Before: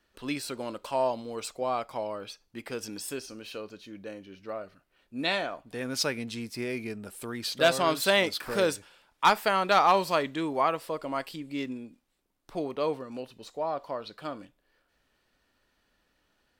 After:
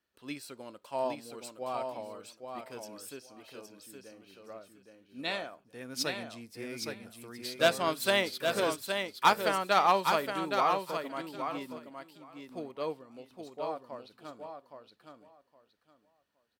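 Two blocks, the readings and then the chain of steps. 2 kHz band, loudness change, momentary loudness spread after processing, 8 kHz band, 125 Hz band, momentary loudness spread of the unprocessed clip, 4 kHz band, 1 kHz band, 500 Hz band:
-3.0 dB, -2.5 dB, 22 LU, -4.0 dB, -5.5 dB, 18 LU, -3.0 dB, -2.5 dB, -4.0 dB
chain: high-pass 76 Hz; treble shelf 11 kHz +6.5 dB; on a send: feedback delay 817 ms, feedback 23%, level -4 dB; on the sum: upward expansion 1.5:1, over -39 dBFS; trim -1.5 dB

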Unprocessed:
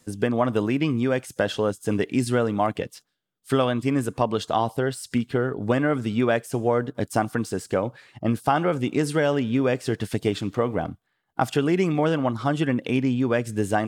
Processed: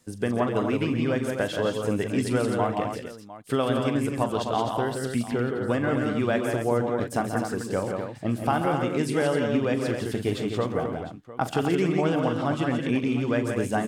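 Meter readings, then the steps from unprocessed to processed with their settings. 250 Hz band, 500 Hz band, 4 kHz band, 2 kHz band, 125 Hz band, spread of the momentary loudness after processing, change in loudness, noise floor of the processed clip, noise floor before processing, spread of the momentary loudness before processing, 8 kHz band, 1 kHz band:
-1.5 dB, -1.5 dB, -1.5 dB, -2.0 dB, -2.0 dB, 5 LU, -2.0 dB, -41 dBFS, -74 dBFS, 5 LU, -2.0 dB, -2.0 dB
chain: multi-tap echo 42/135/161/172/256/704 ms -12.5/-11/-17/-5/-7/-16 dB; trim -4 dB

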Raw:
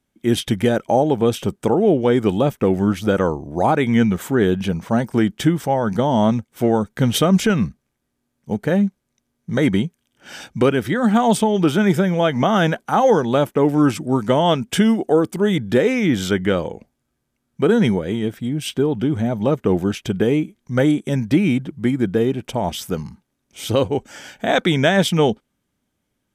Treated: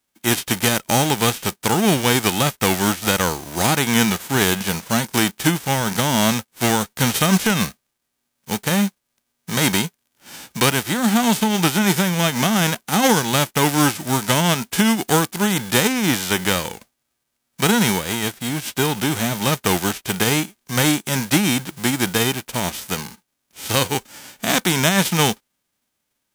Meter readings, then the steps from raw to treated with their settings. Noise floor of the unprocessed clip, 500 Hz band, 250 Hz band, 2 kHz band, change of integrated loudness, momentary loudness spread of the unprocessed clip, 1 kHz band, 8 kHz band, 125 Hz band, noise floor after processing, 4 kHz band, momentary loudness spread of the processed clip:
-74 dBFS, -6.0 dB, -2.5 dB, +5.0 dB, -0.5 dB, 8 LU, +0.5 dB, +13.0 dB, -1.0 dB, -76 dBFS, +7.0 dB, 7 LU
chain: formants flattened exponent 0.3; trim -1.5 dB

